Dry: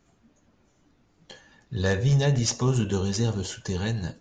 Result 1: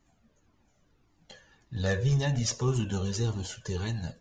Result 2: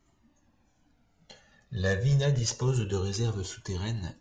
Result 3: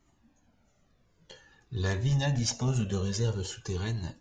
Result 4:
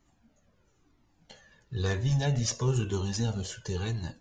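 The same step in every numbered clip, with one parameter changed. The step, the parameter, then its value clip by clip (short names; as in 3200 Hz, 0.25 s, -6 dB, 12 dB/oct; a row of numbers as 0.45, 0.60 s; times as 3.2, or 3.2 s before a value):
cascading flanger, rate: 1.8, 0.26, 0.5, 1 Hz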